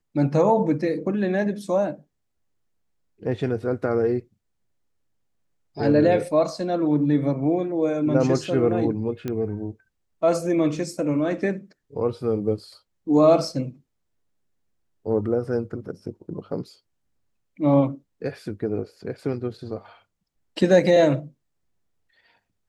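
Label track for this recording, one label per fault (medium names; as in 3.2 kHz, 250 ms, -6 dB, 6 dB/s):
9.280000	9.280000	pop -16 dBFS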